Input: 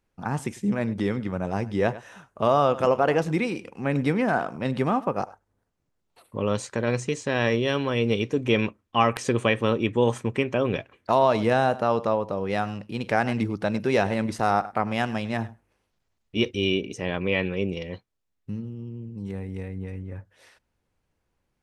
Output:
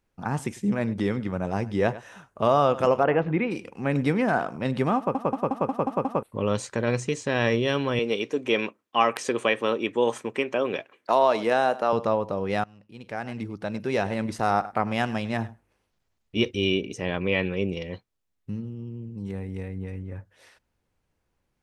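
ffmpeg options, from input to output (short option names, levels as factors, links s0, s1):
-filter_complex "[0:a]asplit=3[s0][s1][s2];[s0]afade=t=out:st=3.03:d=0.02[s3];[s1]lowpass=f=2700:w=0.5412,lowpass=f=2700:w=1.3066,afade=t=in:st=3.03:d=0.02,afade=t=out:st=3.5:d=0.02[s4];[s2]afade=t=in:st=3.5:d=0.02[s5];[s3][s4][s5]amix=inputs=3:normalize=0,asettb=1/sr,asplit=3[s6][s7][s8];[s6]atrim=end=7.994[s9];[s7]atrim=start=7.99:end=11.93,asetpts=PTS-STARTPTS,afade=t=in:d=0.004:c=qsin,afade=t=out:st=3.936:d=0.004:c=qsin,highpass=310[s10];[s8]atrim=start=11.926[s11];[s9][s10]acrossfade=d=0.004:c1=hsin:c2=qsin[s12];[s12][s11]acrossfade=d=0.004:c1=qsin:c2=hsin,asplit=9[s13][s14][s15][s16][s17][s18][s19][s20][s21];[s13]atrim=end=5.152[s22];[s14]atrim=start=4.968:end=5.152[s23];[s15]atrim=start=4.968:end=5.152[s24];[s16]atrim=start=4.968:end=5.152[s25];[s17]atrim=start=4.968:end=5.152[s26];[s18]atrim=start=4.968:end=5.152[s27];[s19]atrim=start=4.968:end=5.152[s28];[s20]atrim=start=6.228:end=12.64,asetpts=PTS-STARTPTS,afade=t=out:st=6.408:d=0.004:c=hsin:silence=0.0749894[s29];[s21]atrim=start=12.64,asetpts=PTS-STARTPTS,afade=t=in:d=2.09:silence=0.0749894[s30];[s22][s23]acrossfade=d=0.004:c1=hsin:c2=hsin[s31];[s31][s24]acrossfade=d=0.004:c1=hsin:c2=hsin[s32];[s32][s25]acrossfade=d=0.004:c1=hsin:c2=hsin[s33];[s33][s26]acrossfade=d=0.004:c1=hsin:c2=hsin[s34];[s34][s27]acrossfade=d=0.004:c1=hsin:c2=hsin[s35];[s35][s28]acrossfade=d=0.004:c1=hsin:c2=hsin[s36];[s29][s30]concat=n=2:v=0:a=1[s37];[s36][s37]acrossfade=d=0.004:c1=hsin:c2=hsin"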